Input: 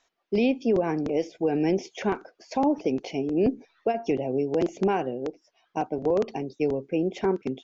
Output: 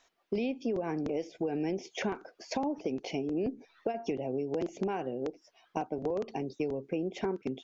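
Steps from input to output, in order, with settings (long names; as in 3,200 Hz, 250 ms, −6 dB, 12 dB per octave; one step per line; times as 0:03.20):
downward compressor 4 to 1, threshold −34 dBFS, peak gain reduction 13 dB
level +2.5 dB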